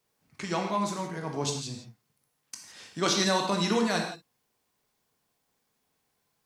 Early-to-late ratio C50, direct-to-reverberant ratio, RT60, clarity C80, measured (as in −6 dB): 5.0 dB, 1.5 dB, non-exponential decay, 7.0 dB